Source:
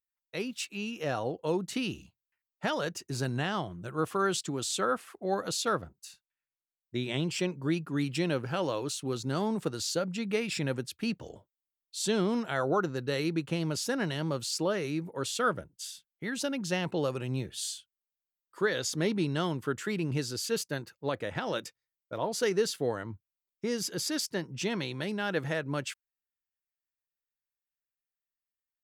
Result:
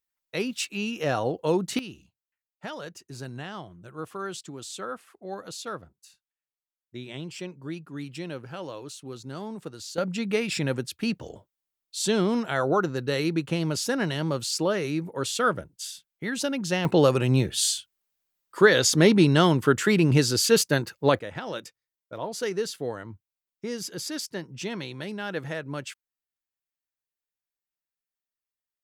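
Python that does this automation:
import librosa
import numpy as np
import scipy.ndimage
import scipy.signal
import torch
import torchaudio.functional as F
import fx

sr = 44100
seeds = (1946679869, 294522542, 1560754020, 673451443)

y = fx.gain(x, sr, db=fx.steps((0.0, 6.0), (1.79, -6.0), (9.98, 4.5), (16.85, 11.5), (21.19, -1.0)))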